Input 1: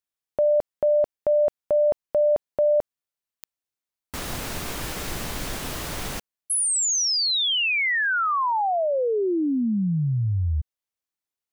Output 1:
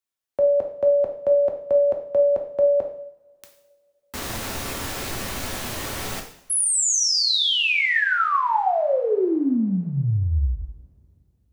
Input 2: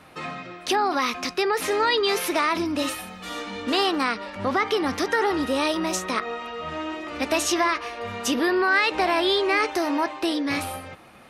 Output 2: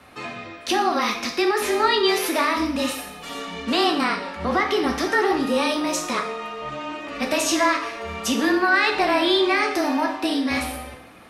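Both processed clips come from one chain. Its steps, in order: low shelf 75 Hz -6.5 dB; two-slope reverb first 0.61 s, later 3.1 s, from -27 dB, DRR 2 dB; frequency shift -22 Hz

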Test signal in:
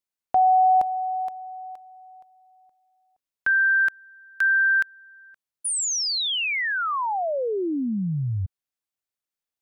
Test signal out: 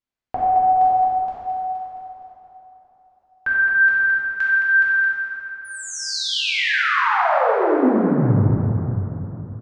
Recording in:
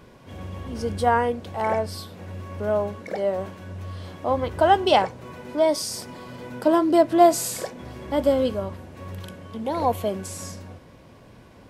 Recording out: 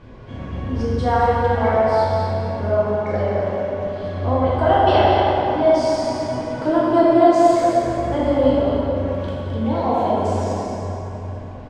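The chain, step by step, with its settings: reverb removal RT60 0.81 s; low shelf 94 Hz +10 dB; in parallel at +2.5 dB: compressor, threshold -28 dBFS; on the sum: air absorption 130 m; on a send: echo 0.217 s -7 dB; on the sum: plate-style reverb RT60 3.6 s, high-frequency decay 0.55×, DRR -8.5 dB; gain -7 dB

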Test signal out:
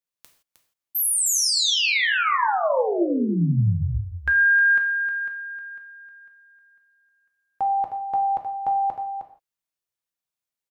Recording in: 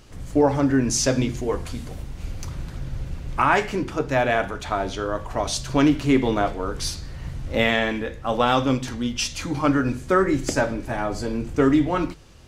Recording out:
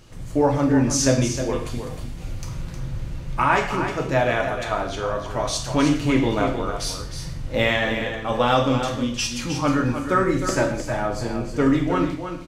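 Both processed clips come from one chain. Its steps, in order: echo 0.311 s -8.5 dB; non-linear reverb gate 0.19 s falling, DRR 3 dB; gain -1.5 dB

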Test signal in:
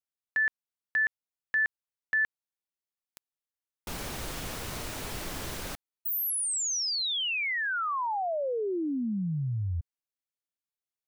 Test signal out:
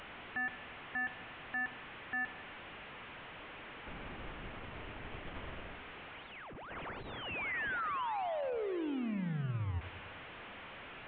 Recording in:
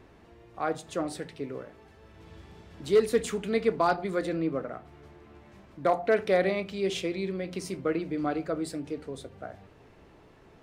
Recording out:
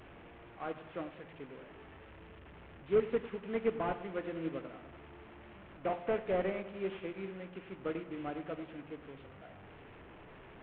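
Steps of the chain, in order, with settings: delta modulation 16 kbps, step -32.5 dBFS; dark delay 98 ms, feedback 61%, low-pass 1700 Hz, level -10 dB; upward expander 1.5:1, over -38 dBFS; gain -5.5 dB

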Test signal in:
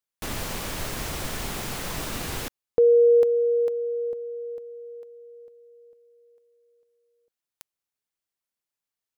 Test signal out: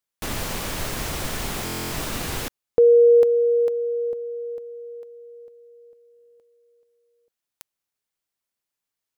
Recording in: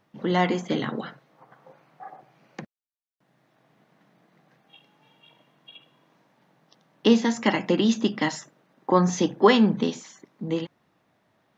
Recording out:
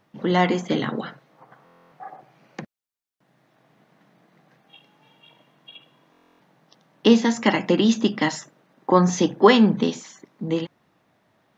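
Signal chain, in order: stuck buffer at 1.64/6.12, samples 1024, times 11; gain +3 dB

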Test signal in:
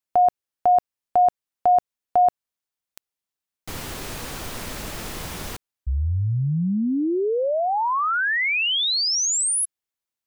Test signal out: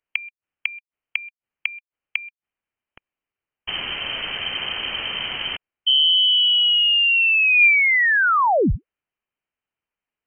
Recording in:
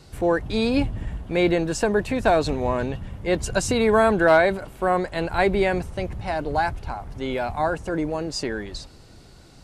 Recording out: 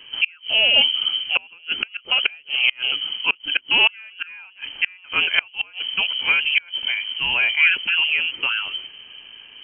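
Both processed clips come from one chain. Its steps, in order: bell 700 Hz +5.5 dB 0.24 oct; flipped gate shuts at -11 dBFS, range -31 dB; inverted band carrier 3100 Hz; gain +5 dB

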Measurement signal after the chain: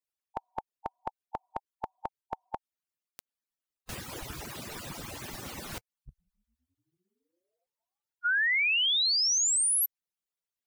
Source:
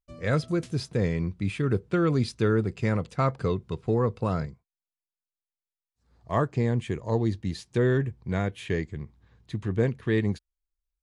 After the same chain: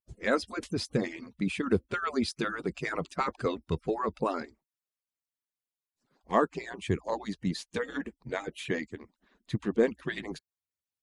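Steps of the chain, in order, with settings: median-filter separation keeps percussive; gain +2 dB

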